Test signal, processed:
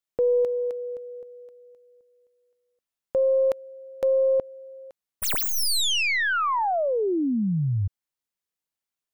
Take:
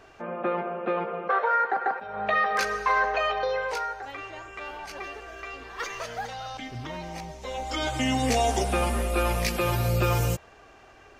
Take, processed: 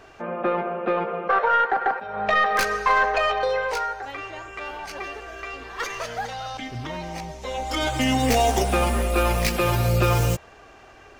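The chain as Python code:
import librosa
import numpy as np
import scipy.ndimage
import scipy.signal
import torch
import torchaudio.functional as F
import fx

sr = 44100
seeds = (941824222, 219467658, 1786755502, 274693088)

y = fx.tracing_dist(x, sr, depth_ms=0.088)
y = F.gain(torch.from_numpy(y), 4.0).numpy()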